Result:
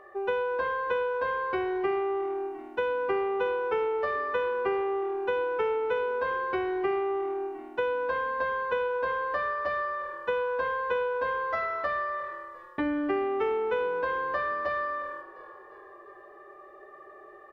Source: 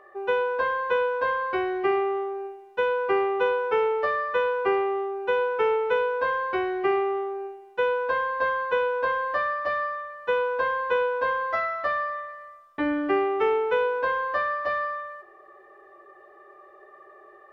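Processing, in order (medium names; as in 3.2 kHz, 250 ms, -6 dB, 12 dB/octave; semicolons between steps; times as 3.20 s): bass shelf 260 Hz +6.5 dB; on a send: frequency-shifting echo 351 ms, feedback 59%, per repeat -39 Hz, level -22 dB; on the sum: compression 2.5:1, threshold -28 dBFS, peak gain reduction 7.5 dB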